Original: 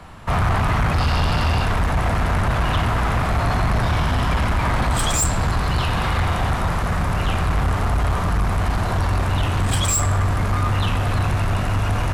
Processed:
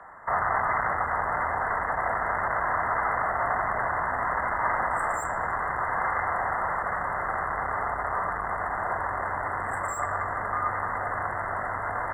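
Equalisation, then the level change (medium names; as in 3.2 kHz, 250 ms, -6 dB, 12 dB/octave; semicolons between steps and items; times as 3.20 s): brick-wall FIR band-stop 2.1–7.2 kHz; three-band isolator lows -14 dB, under 500 Hz, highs -23 dB, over 3.5 kHz; bass shelf 220 Hz -11.5 dB; 0.0 dB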